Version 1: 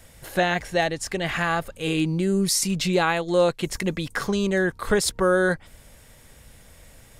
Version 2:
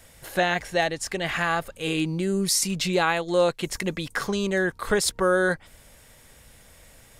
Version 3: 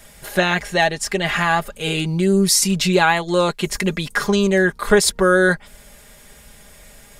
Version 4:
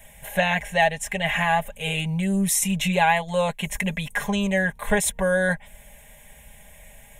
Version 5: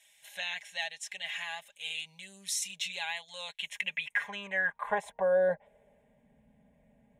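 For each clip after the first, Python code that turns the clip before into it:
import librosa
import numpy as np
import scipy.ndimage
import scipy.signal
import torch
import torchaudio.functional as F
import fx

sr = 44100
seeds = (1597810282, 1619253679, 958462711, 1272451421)

y1 = fx.low_shelf(x, sr, hz=340.0, db=-4.5)
y2 = y1 + 0.58 * np.pad(y1, (int(4.9 * sr / 1000.0), 0))[:len(y1)]
y2 = F.gain(torch.from_numpy(y2), 5.5).numpy()
y3 = fx.fixed_phaser(y2, sr, hz=1300.0, stages=6)
y3 = F.gain(torch.from_numpy(y3), -1.0).numpy()
y4 = fx.filter_sweep_bandpass(y3, sr, from_hz=4500.0, to_hz=260.0, start_s=3.39, end_s=6.27, q=2.5)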